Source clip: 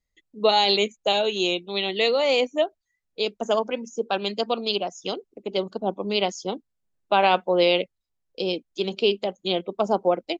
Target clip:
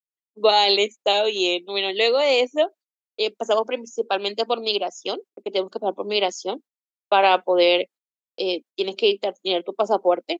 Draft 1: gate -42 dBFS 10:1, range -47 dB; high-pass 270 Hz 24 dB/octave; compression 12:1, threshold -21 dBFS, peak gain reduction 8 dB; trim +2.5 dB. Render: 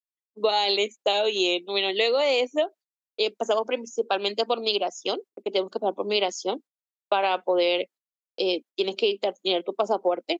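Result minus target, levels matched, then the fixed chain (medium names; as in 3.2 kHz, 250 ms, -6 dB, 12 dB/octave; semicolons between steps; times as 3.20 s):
compression: peak gain reduction +8 dB
gate -42 dBFS 10:1, range -47 dB; high-pass 270 Hz 24 dB/octave; trim +2.5 dB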